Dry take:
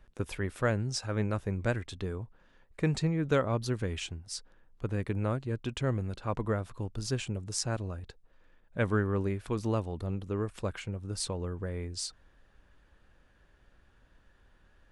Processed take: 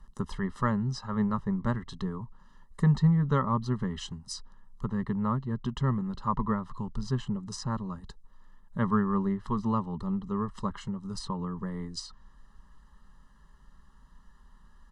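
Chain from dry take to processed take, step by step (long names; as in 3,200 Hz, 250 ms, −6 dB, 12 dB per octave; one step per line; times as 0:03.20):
phaser with its sweep stopped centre 470 Hz, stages 8
comb filter 1 ms, depth 81%
treble cut that deepens with the level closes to 2,700 Hz, closed at −33 dBFS
level +5 dB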